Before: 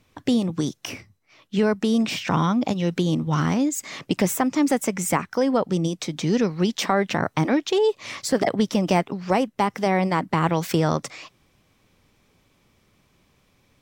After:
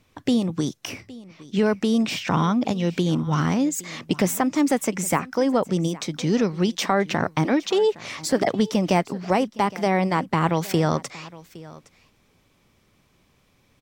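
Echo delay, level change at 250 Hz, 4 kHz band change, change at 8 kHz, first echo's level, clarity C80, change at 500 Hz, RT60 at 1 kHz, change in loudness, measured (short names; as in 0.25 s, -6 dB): 0.814 s, 0.0 dB, 0.0 dB, 0.0 dB, -20.0 dB, none, 0.0 dB, none, 0.0 dB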